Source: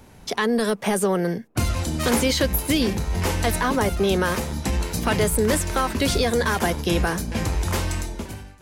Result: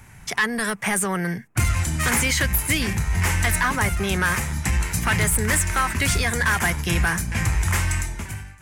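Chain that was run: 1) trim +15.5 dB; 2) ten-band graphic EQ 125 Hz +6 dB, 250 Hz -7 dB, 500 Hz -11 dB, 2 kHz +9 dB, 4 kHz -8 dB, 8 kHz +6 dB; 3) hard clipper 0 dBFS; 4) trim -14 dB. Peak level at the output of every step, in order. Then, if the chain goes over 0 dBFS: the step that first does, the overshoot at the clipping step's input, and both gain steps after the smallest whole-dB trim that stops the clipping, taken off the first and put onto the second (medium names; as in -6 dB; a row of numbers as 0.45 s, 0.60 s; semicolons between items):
+7.0 dBFS, +9.0 dBFS, 0.0 dBFS, -14.0 dBFS; step 1, 9.0 dB; step 1 +6.5 dB, step 4 -5 dB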